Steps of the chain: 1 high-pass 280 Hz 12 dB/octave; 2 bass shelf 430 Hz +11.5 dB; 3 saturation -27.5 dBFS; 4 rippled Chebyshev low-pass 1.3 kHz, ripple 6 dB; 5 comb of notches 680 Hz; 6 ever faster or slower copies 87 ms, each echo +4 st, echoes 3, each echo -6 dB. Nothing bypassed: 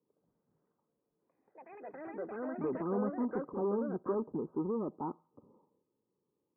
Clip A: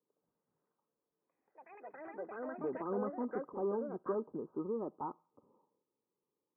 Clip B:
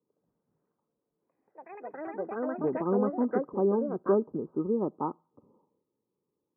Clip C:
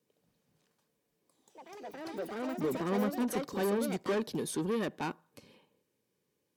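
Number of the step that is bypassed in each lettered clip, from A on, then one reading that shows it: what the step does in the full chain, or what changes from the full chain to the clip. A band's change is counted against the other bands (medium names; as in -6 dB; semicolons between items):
2, 125 Hz band -5.5 dB; 3, distortion -7 dB; 4, 2 kHz band +8.0 dB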